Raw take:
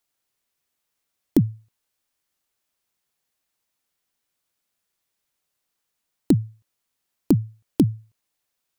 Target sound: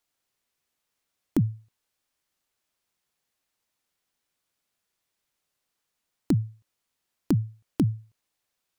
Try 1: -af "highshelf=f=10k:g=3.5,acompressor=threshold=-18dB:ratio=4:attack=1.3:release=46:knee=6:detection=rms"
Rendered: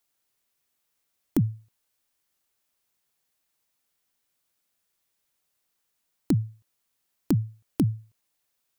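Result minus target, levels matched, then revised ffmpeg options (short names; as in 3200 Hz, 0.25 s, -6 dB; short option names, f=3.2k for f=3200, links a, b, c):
8000 Hz band +3.0 dB
-af "highshelf=f=10k:g=-5.5,acompressor=threshold=-18dB:ratio=4:attack=1.3:release=46:knee=6:detection=rms"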